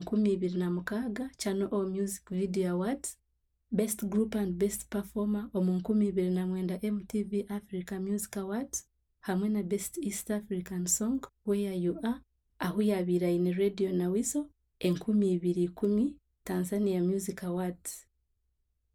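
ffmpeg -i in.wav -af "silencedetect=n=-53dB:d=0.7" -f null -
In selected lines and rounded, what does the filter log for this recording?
silence_start: 18.03
silence_end: 18.94 | silence_duration: 0.91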